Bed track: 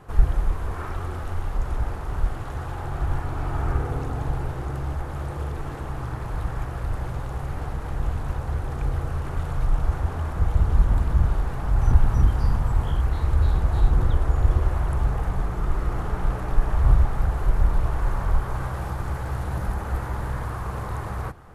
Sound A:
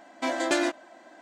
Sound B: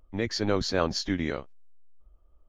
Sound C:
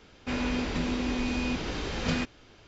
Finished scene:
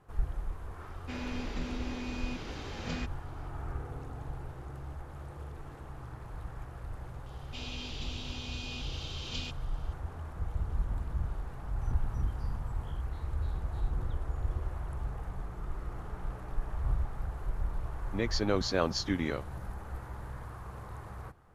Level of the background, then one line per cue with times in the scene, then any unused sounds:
bed track -14 dB
0.81 add C -9 dB
7.26 add C -17.5 dB + resonant high shelf 2300 Hz +10.5 dB, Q 3
18 add B -3 dB
not used: A

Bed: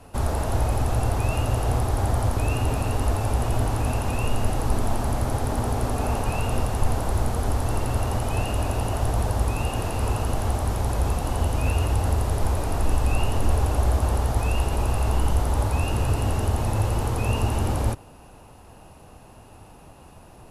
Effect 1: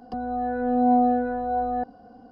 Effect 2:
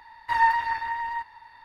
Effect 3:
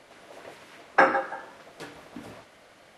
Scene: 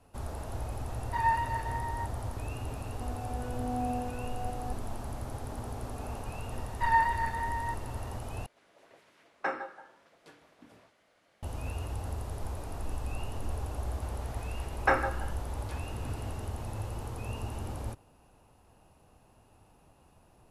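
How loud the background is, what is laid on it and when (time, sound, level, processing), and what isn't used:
bed -14 dB
0.84 add 2 -13 dB + bell 530 Hz +8.5 dB 2.6 oct
2.89 add 1 -14.5 dB
6.52 add 2 -4 dB + high shelf 3900 Hz -8.5 dB
8.46 replace with 3 -14 dB
13.89 add 3 -6.5 dB

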